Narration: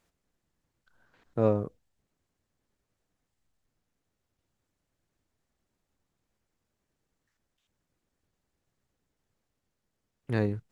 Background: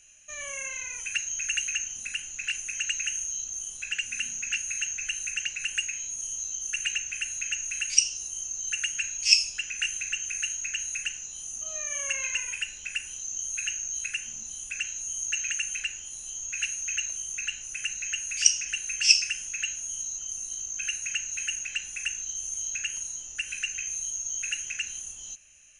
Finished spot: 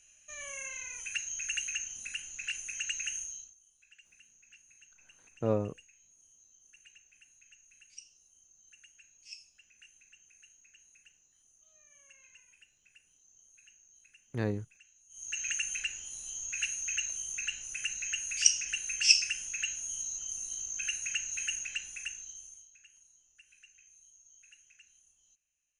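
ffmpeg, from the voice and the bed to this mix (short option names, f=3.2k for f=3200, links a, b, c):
-filter_complex "[0:a]adelay=4050,volume=-4.5dB[a];[1:a]volume=19.5dB,afade=t=out:st=3.17:d=0.38:silence=0.0707946,afade=t=in:st=15.09:d=0.42:silence=0.0530884,afade=t=out:st=21.54:d=1.14:silence=0.0630957[b];[a][b]amix=inputs=2:normalize=0"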